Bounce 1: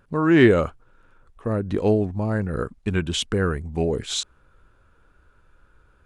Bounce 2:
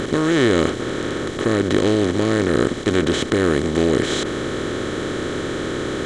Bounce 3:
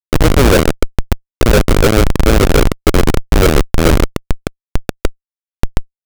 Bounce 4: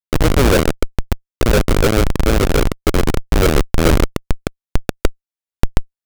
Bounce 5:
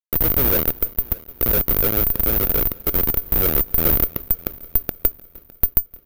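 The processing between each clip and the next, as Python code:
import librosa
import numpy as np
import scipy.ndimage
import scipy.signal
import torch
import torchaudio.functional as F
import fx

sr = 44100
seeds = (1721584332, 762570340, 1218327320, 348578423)

y1 = fx.bin_compress(x, sr, power=0.2)
y1 = y1 * 10.0 ** (-5.5 / 20.0)
y2 = fx.filter_lfo_lowpass(y1, sr, shape='sine', hz=6.9, low_hz=490.0, high_hz=1700.0, q=4.4)
y2 = fx.graphic_eq_10(y2, sr, hz=(125, 500, 4000, 8000), db=(-6, 6, -5, 6))
y2 = fx.schmitt(y2, sr, flips_db=-6.5)
y2 = y2 * 10.0 ** (6.0 / 20.0)
y3 = fx.rider(y2, sr, range_db=4, speed_s=2.0)
y3 = y3 * 10.0 ** (-4.0 / 20.0)
y4 = fx.echo_heads(y3, sr, ms=304, heads='first and second', feedback_pct=50, wet_db=-24)
y4 = (np.kron(scipy.signal.resample_poly(y4, 1, 3), np.eye(3)[0]) * 3)[:len(y4)]
y4 = y4 * 10.0 ** (-10.5 / 20.0)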